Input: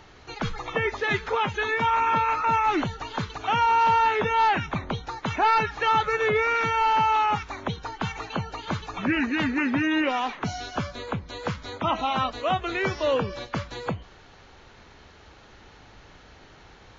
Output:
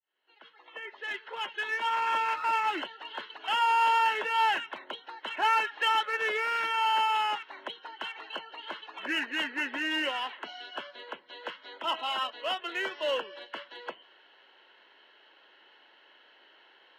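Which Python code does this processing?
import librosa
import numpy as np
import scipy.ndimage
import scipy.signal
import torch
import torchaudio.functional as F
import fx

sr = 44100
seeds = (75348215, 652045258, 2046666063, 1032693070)

p1 = fx.fade_in_head(x, sr, length_s=2.26)
p2 = fx.cabinet(p1, sr, low_hz=370.0, low_slope=24, high_hz=3900.0, hz=(450.0, 750.0, 1100.0, 1700.0, 3000.0), db=(-5, -5, 4, 3, 10))
p3 = np.clip(10.0 ** (26.5 / 20.0) * p2, -1.0, 1.0) / 10.0 ** (26.5 / 20.0)
p4 = p2 + (p3 * 10.0 ** (-3.5 / 20.0))
p5 = fx.notch_comb(p4, sr, f0_hz=1200.0)
p6 = fx.upward_expand(p5, sr, threshold_db=-30.0, expansion=1.5)
y = p6 * 10.0 ** (-5.5 / 20.0)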